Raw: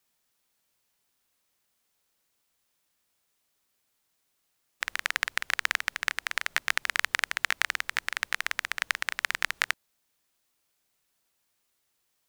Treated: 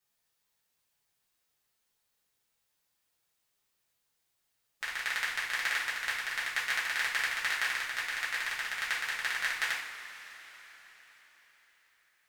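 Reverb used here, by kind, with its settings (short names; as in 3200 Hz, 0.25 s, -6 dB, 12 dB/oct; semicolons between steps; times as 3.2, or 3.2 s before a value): two-slope reverb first 0.5 s, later 4.8 s, from -17 dB, DRR -7.5 dB; gain -11 dB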